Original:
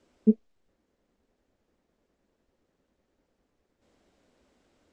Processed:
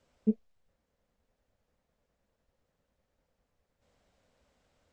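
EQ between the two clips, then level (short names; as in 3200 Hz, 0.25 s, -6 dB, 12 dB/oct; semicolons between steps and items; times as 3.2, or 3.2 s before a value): EQ curve 140 Hz 0 dB, 350 Hz -14 dB, 500 Hz -3 dB; 0.0 dB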